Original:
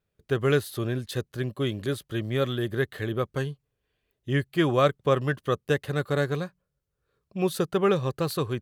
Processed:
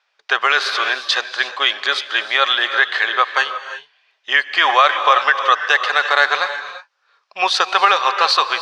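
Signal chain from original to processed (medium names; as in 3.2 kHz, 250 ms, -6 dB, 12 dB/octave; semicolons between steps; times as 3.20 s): Chebyshev band-pass 820–5400 Hz, order 3; gated-style reverb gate 380 ms rising, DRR 11 dB; loudness maximiser +23 dB; trim -1 dB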